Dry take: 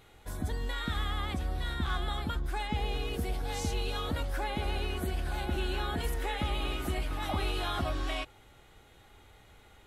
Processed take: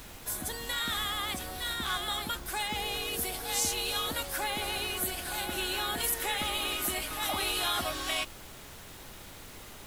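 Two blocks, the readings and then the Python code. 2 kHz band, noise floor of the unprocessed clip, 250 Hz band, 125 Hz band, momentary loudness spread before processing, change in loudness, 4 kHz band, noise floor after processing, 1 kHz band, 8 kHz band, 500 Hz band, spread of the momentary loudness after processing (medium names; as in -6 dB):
+4.5 dB, -58 dBFS, -4.0 dB, -11.0 dB, 2 LU, +3.0 dB, +7.5 dB, -48 dBFS, +2.0 dB, +14.0 dB, -1.0 dB, 18 LU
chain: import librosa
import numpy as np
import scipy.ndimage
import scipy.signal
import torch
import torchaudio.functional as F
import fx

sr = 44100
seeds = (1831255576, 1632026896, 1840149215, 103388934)

y = fx.riaa(x, sr, side='recording')
y = fx.dmg_noise_colour(y, sr, seeds[0], colour='pink', level_db=-50.0)
y = F.gain(torch.from_numpy(y), 2.0).numpy()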